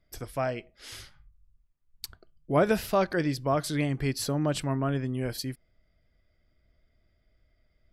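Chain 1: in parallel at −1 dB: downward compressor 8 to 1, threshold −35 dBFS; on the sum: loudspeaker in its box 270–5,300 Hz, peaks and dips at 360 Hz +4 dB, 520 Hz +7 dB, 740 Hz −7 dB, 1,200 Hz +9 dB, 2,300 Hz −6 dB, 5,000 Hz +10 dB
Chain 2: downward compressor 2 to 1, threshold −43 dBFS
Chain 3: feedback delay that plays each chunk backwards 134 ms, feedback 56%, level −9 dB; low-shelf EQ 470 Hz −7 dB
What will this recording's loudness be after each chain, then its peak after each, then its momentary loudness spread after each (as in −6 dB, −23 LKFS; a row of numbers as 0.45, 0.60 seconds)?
−27.0, −40.0, −32.0 LKFS; −7.0, −23.0, −14.0 dBFS; 14, 11, 16 LU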